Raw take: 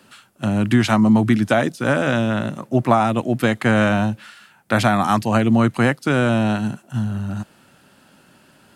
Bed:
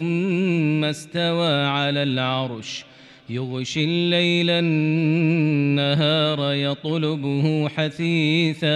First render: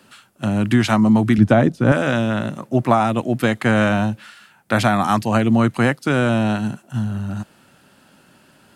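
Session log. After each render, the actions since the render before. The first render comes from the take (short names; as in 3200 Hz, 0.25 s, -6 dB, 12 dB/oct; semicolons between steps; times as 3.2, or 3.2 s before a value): 1.38–1.92 tilt -3 dB/oct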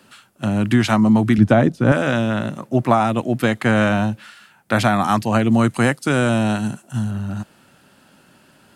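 5.51–7.11 bell 8700 Hz +8 dB 1.1 oct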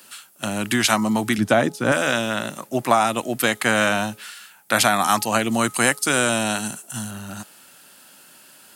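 RIAA curve recording; de-hum 421.4 Hz, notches 3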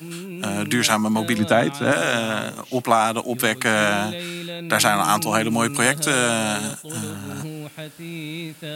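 add bed -12.5 dB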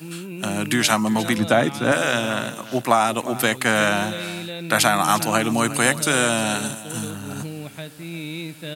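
echo 0.356 s -16 dB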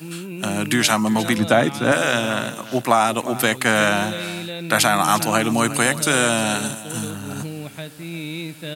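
gain +1.5 dB; limiter -3 dBFS, peak gain reduction 3 dB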